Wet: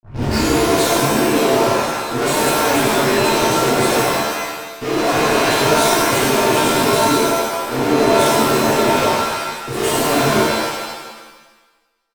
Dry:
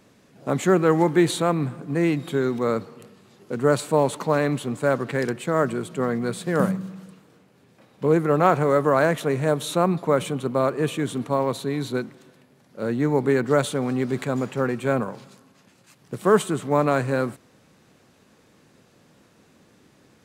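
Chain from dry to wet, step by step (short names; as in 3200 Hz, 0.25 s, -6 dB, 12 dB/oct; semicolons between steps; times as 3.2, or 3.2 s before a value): tape start at the beginning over 0.87 s; comb 2.8 ms, depth 89%; fuzz box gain 37 dB, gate -41 dBFS; granular stretch 0.6×, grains 30 ms; shimmer reverb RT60 1.2 s, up +7 st, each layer -2 dB, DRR -9.5 dB; gain -12.5 dB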